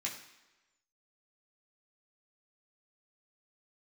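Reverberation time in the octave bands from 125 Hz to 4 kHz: 0.85, 1.0, 1.1, 1.1, 1.1, 1.0 s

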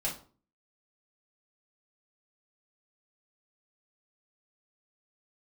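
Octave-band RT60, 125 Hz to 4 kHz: 0.55, 0.55, 0.45, 0.40, 0.30, 0.30 s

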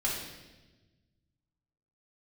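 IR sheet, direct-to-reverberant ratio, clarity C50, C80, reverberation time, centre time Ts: -5.5 dB, 1.5 dB, 4.5 dB, 1.2 s, 58 ms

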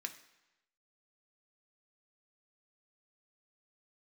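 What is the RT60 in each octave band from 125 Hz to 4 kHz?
0.95, 0.90, 0.95, 1.0, 1.0, 0.95 s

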